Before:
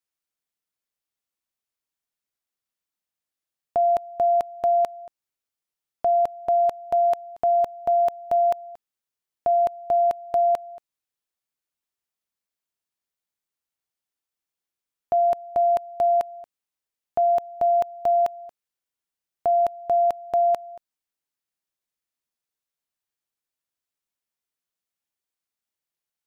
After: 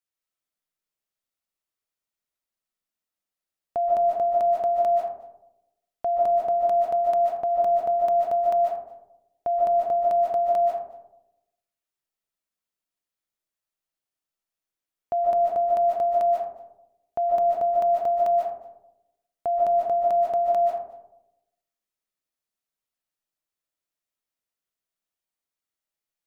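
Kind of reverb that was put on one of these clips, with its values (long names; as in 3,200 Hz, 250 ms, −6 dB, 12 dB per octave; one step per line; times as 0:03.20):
comb and all-pass reverb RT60 0.9 s, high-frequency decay 0.3×, pre-delay 105 ms, DRR −1.5 dB
level −4.5 dB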